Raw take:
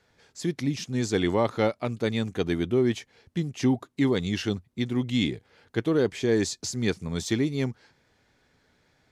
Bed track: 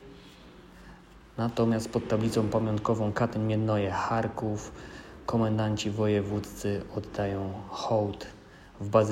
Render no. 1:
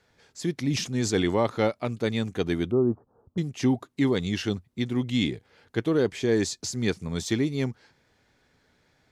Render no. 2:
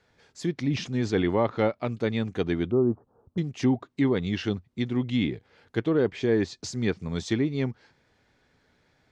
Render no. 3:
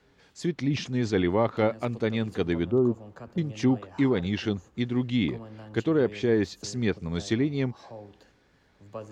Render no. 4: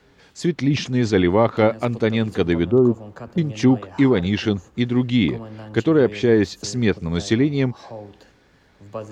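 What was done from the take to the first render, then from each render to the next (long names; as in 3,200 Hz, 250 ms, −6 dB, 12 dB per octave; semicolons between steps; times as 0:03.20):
0:00.65–0:01.25: level that may fall only so fast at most 66 dB per second; 0:02.71–0:03.38: Butterworth low-pass 1,300 Hz 72 dB per octave
treble cut that deepens with the level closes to 2,800 Hz, closed at −20.5 dBFS; high-shelf EQ 8,400 Hz −10 dB
mix in bed track −17 dB
level +7.5 dB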